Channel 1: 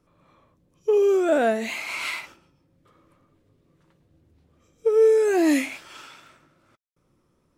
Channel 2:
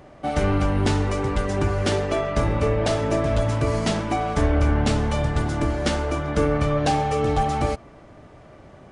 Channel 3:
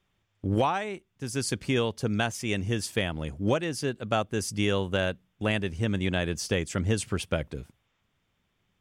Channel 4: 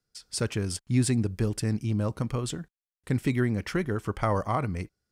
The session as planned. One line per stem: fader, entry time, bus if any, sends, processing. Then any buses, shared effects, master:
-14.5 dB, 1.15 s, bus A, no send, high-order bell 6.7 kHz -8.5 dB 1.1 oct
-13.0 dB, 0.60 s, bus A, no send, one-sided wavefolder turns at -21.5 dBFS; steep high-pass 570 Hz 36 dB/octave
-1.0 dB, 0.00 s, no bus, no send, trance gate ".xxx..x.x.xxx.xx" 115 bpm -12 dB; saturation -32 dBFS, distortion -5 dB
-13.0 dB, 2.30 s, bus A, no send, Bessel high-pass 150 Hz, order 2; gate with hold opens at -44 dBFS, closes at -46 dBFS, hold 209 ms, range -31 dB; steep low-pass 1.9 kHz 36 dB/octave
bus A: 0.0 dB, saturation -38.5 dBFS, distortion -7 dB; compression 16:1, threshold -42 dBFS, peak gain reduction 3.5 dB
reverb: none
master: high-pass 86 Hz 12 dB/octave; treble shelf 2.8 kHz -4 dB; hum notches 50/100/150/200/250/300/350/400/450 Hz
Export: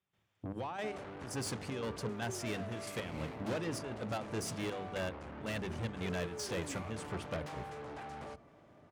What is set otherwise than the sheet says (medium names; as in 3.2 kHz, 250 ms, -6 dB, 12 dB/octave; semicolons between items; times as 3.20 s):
stem 1: missing high-order bell 6.7 kHz -8.5 dB 1.1 oct; stem 2: missing steep high-pass 570 Hz 36 dB/octave